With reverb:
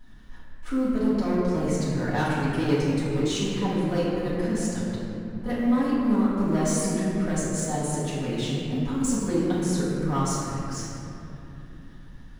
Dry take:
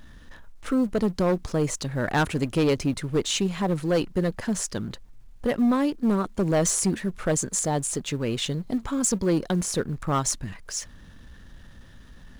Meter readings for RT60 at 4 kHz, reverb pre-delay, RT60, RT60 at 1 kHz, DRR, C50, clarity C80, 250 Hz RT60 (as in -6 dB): 1.7 s, 3 ms, 3.0 s, 2.8 s, -11.0 dB, -2.5 dB, -0.5 dB, 4.0 s